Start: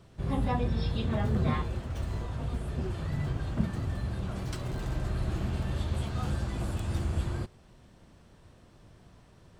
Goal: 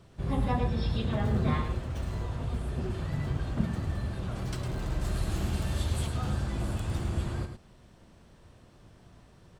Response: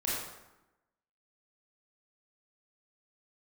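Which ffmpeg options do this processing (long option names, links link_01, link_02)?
-filter_complex "[0:a]asettb=1/sr,asplit=3[link_01][link_02][link_03];[link_01]atrim=end=5.014[link_04];[link_02]atrim=start=5.01:end=6.07,asetpts=PTS-STARTPTS,afade=type=in:duration=0.004:curve=qsin,afade=type=out:start_time=1.056:duration=0.004:curve=qsin,highshelf=frequency=4700:gain=12[link_05];[link_03]atrim=start=6.066[link_06];[link_04][link_05]acrossfade=duration=0.004:curve1=hsin:curve2=qsin[link_07];[link_07][link_06]acrossfade=duration=0.004:curve1=qsin:curve2=hsin,asplit=2[link_08][link_09];[link_09]aecho=0:1:106:0.398[link_10];[link_08][link_10]amix=inputs=2:normalize=0"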